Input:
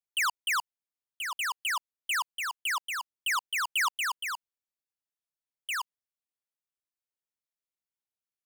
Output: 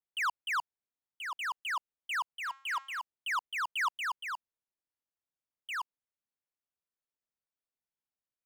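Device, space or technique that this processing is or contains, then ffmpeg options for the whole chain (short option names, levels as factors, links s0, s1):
through cloth: -filter_complex "[0:a]asplit=3[s0][s1][s2];[s0]afade=t=out:st=2.44:d=0.02[s3];[s1]bandreject=f=270.5:t=h:w=4,bandreject=f=541:t=h:w=4,bandreject=f=811.5:t=h:w=4,bandreject=f=1082:t=h:w=4,bandreject=f=1352.5:t=h:w=4,bandreject=f=1623:t=h:w=4,bandreject=f=1893.5:t=h:w=4,bandreject=f=2164:t=h:w=4,bandreject=f=2434.5:t=h:w=4,bandreject=f=2705:t=h:w=4,bandreject=f=2975.5:t=h:w=4,bandreject=f=3246:t=h:w=4,bandreject=f=3516.5:t=h:w=4,bandreject=f=3787:t=h:w=4,bandreject=f=4057.5:t=h:w=4,bandreject=f=4328:t=h:w=4,bandreject=f=4598.5:t=h:w=4,bandreject=f=4869:t=h:w=4,bandreject=f=5139.5:t=h:w=4,bandreject=f=5410:t=h:w=4,bandreject=f=5680.5:t=h:w=4,bandreject=f=5951:t=h:w=4,bandreject=f=6221.5:t=h:w=4,bandreject=f=6492:t=h:w=4,bandreject=f=6762.5:t=h:w=4,bandreject=f=7033:t=h:w=4,bandreject=f=7303.5:t=h:w=4,bandreject=f=7574:t=h:w=4,bandreject=f=7844.5:t=h:w=4,bandreject=f=8115:t=h:w=4,afade=t=in:st=2.44:d=0.02,afade=t=out:st=2.99:d=0.02[s4];[s2]afade=t=in:st=2.99:d=0.02[s5];[s3][s4][s5]amix=inputs=3:normalize=0,highshelf=f=3200:g=-15.5"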